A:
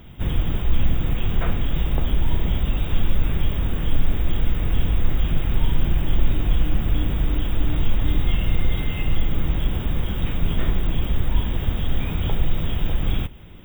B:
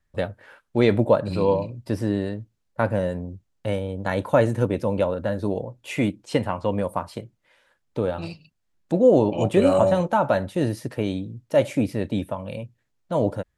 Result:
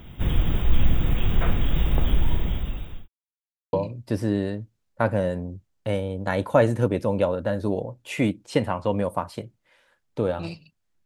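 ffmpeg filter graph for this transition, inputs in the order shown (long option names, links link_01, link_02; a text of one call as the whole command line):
ffmpeg -i cue0.wav -i cue1.wav -filter_complex "[0:a]apad=whole_dur=11.05,atrim=end=11.05,asplit=2[link_01][link_02];[link_01]atrim=end=3.08,asetpts=PTS-STARTPTS,afade=type=out:start_time=2.13:duration=0.95[link_03];[link_02]atrim=start=3.08:end=3.73,asetpts=PTS-STARTPTS,volume=0[link_04];[1:a]atrim=start=1.52:end=8.84,asetpts=PTS-STARTPTS,afade=type=in:duration=0.004:curve=hsin[link_05];[link_03][link_04][link_05]concat=n=3:v=0:a=1" out.wav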